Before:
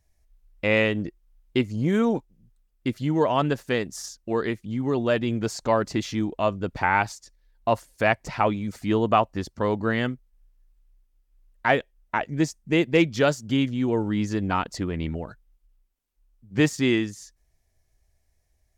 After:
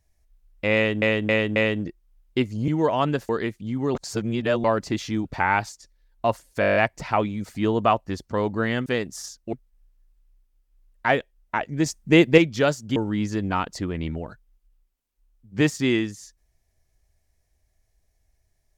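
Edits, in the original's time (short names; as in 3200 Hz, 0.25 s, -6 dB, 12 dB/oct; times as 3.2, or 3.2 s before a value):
0.75–1.02 loop, 4 plays
1.87–3.05 cut
3.66–4.33 move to 10.13
4.99–5.68 reverse
6.29–6.68 cut
8.03 stutter 0.02 s, 9 plays
12.46–12.98 gain +6 dB
13.56–13.95 cut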